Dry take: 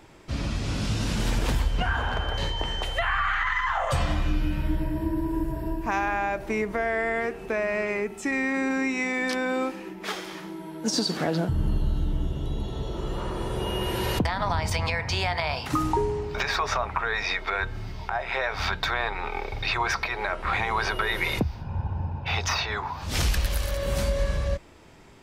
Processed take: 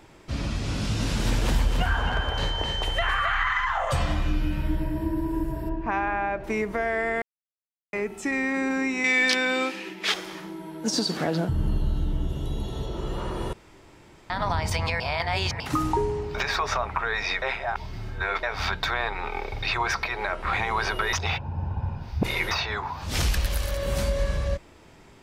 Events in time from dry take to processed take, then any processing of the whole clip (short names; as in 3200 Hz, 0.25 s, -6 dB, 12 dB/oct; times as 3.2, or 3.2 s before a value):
0.72–3.65 echo 0.266 s -6 dB
5.69–6.44 LPF 2600 Hz
7.22–7.93 mute
9.04–10.14 weighting filter D
12.29–12.86 high shelf 7100 Hz +8.5 dB
13.53–14.3 room tone
15–15.6 reverse
17.42–18.43 reverse
21.13–22.51 reverse